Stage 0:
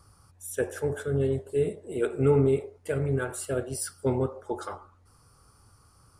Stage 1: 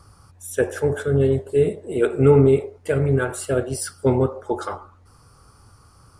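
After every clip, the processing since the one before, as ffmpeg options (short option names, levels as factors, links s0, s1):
-af "highshelf=f=9200:g=-8,volume=2.51"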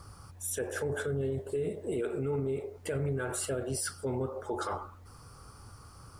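-af "acompressor=threshold=0.0562:ratio=6,alimiter=level_in=1.12:limit=0.0631:level=0:latency=1:release=27,volume=0.891,acrusher=bits=11:mix=0:aa=0.000001"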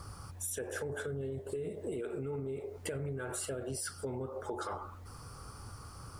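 -af "acompressor=threshold=0.0112:ratio=5,volume=1.41"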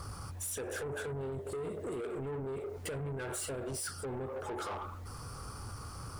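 -af "asoftclip=type=tanh:threshold=0.01,volume=1.78"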